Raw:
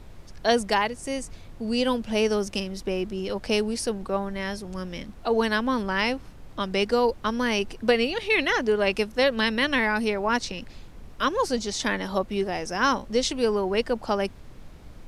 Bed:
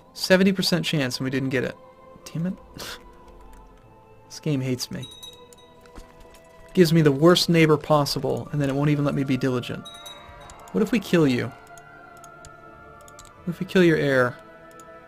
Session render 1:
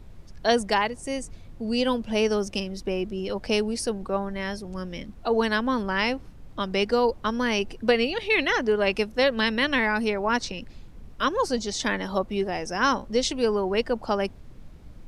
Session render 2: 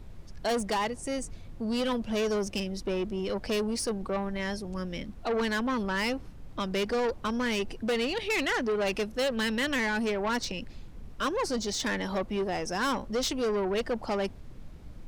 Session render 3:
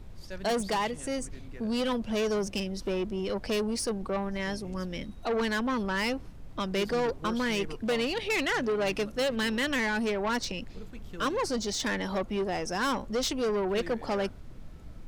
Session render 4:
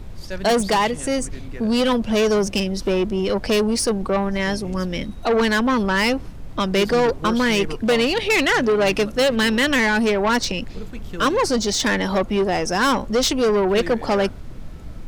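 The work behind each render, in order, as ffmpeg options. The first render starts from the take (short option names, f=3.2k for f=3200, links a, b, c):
-af "afftdn=nr=6:nf=-45"
-af "asoftclip=type=tanh:threshold=-24.5dB"
-filter_complex "[1:a]volume=-25dB[a];[0:a][a]amix=inputs=2:normalize=0"
-af "volume=10.5dB"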